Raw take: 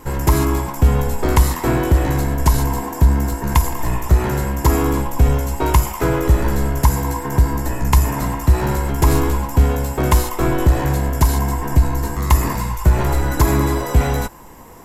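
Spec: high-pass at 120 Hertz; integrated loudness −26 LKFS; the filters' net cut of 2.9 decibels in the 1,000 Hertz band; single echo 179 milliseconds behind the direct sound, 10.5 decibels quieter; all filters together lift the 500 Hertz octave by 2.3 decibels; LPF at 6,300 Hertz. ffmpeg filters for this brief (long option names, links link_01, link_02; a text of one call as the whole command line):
ffmpeg -i in.wav -af "highpass=120,lowpass=6300,equalizer=frequency=500:width_type=o:gain=4,equalizer=frequency=1000:width_type=o:gain=-4.5,aecho=1:1:179:0.299,volume=-5dB" out.wav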